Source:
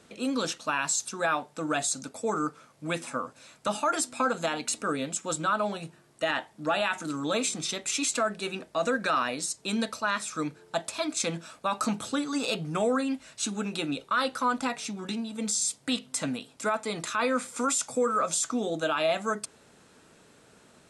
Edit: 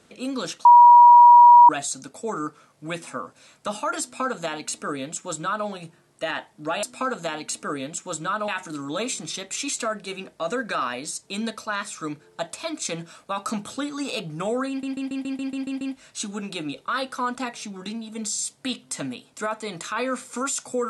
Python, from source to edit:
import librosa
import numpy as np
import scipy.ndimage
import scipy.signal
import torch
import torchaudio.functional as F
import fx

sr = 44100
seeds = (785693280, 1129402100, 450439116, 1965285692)

y = fx.edit(x, sr, fx.bleep(start_s=0.65, length_s=1.04, hz=961.0, db=-6.5),
    fx.duplicate(start_s=4.02, length_s=1.65, to_s=6.83),
    fx.stutter(start_s=13.04, slice_s=0.14, count=9), tone=tone)